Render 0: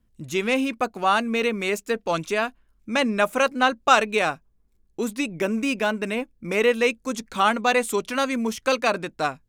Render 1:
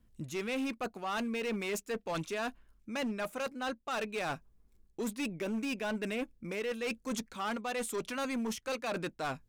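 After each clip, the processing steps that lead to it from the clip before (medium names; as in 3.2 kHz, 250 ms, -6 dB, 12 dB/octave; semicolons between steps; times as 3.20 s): reverse; compression 12:1, threshold -30 dBFS, peak gain reduction 20 dB; reverse; hard clipper -30.5 dBFS, distortion -12 dB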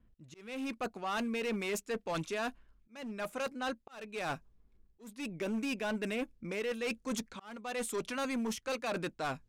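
level-controlled noise filter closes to 2.6 kHz, open at -33 dBFS; slow attack 434 ms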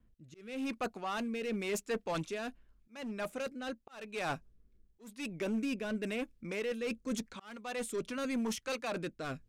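rotary cabinet horn 0.9 Hz; trim +1.5 dB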